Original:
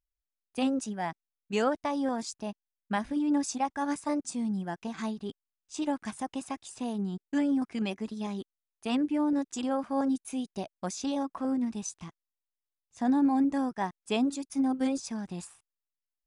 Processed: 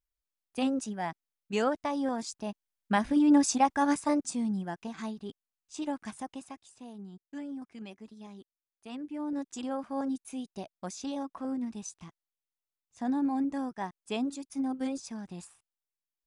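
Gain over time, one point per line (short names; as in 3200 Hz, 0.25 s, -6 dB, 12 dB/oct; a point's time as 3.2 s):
2.33 s -1 dB
3.22 s +5.5 dB
3.74 s +5.5 dB
5 s -3.5 dB
6.19 s -3.5 dB
6.76 s -12.5 dB
8.97 s -12.5 dB
9.43 s -4.5 dB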